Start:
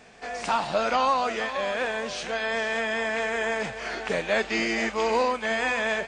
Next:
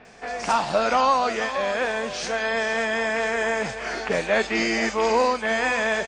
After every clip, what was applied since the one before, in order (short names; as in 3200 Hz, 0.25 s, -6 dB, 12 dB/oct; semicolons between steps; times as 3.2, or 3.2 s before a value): bell 5400 Hz +3.5 dB 0.54 oct; bands offset in time lows, highs 50 ms, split 3300 Hz; gain +3.5 dB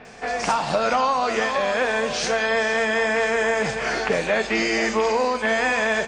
compressor, threshold -23 dBFS, peak gain reduction 8 dB; on a send at -12 dB: reverb RT60 1.3 s, pre-delay 3 ms; on the sum: gain +5 dB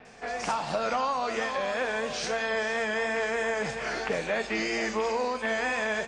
vibrato 3 Hz 35 cents; gain -7.5 dB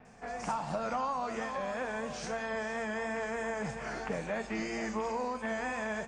EQ curve 200 Hz 0 dB, 420 Hz -8 dB, 910 Hz -4 dB, 4000 Hz -14 dB, 7100 Hz -6 dB